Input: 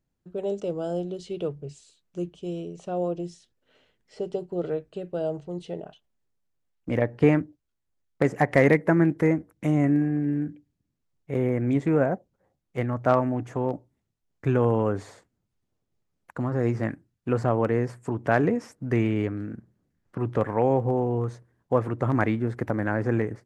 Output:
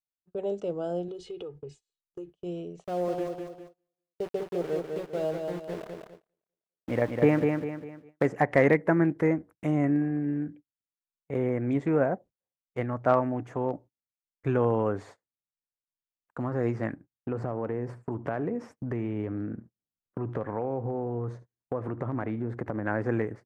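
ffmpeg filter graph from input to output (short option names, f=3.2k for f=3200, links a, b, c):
-filter_complex "[0:a]asettb=1/sr,asplit=3[a][b][c];[a]atrim=end=1.084[d];[b]atrim=start=1.08:end=2.3,asetpts=PTS-STARTPTS,afade=t=in:d=0.004:c=qsin,afade=t=out:st=1.216:d=0.004:c=qsin,aecho=1:1:2.4:0.79,atrim=end_sample=53802,acompressor=threshold=-32dB:ratio=12:attack=3.2:release=140:knee=1:detection=peak[e];[c]atrim=start=2.296[f];[d][e]acrossfade=d=0.004:c1=hsin:c2=qsin[g];[g][f]acrossfade=d=0.004:c1=qsin:c2=hsin,asettb=1/sr,asplit=3[h][i][j];[h]atrim=end=2.844[k];[i]atrim=start=2.84:end=8.26,asetpts=PTS-STARTPTS,afade=t=in:d=0.004:c=qsin,afade=t=out:st=5.416:d=0.004:c=qsin,aeval=exprs='val(0)*gte(abs(val(0)),0.015)':c=same,aecho=1:1:200|400|600|800|1000:0.596|0.232|0.0906|0.0353|0.0138,atrim=end_sample=239022[l];[j]atrim=start=8.256[m];[k][l]acrossfade=d=0.004:c1=hsin:c2=qsin[n];[n][m]acrossfade=d=0.004:c1=qsin:c2=hsin,asettb=1/sr,asplit=3[o][p][q];[o]atrim=end=16.934[r];[p]atrim=start=16.93:end=22.86,asetpts=PTS-STARTPTS,afade=t=in:d=0.004:c=qsin,afade=t=out:st=5.926:d=0.004:c=qsin,tiltshelf=f=1.3k:g=4.5,acompressor=threshold=-24dB:ratio=5:attack=3.2:release=140:knee=1:detection=peak,aecho=1:1:75:0.126,atrim=end_sample=261513[s];[q]atrim=start=22.856[t];[r][s]acrossfade=d=0.004:c1=hsin:c2=qsin[u];[u][t]acrossfade=d=0.004:c1=qsin:c2=hsin,lowshelf=f=300:g=-6,agate=range=-28dB:threshold=-46dB:ratio=16:detection=peak,highshelf=f=3.1k:g=-9.5"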